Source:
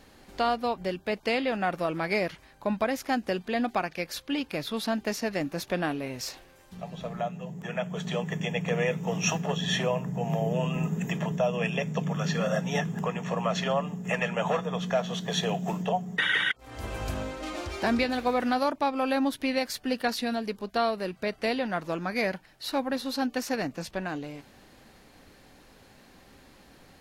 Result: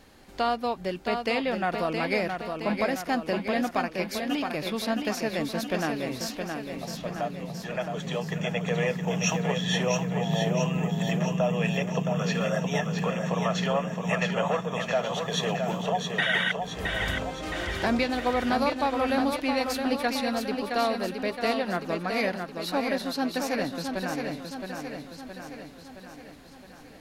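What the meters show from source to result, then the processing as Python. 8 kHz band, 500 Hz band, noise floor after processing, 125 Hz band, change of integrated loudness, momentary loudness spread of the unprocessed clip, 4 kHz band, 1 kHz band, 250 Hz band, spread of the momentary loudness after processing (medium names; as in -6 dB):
+1.5 dB, +1.5 dB, -47 dBFS, +1.5 dB, +1.5 dB, 8 LU, +1.5 dB, +1.5 dB, +1.5 dB, 9 LU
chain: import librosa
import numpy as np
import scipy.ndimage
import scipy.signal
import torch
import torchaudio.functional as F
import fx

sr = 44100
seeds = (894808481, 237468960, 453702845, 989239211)

y = fx.echo_feedback(x, sr, ms=668, feedback_pct=57, wet_db=-5.5)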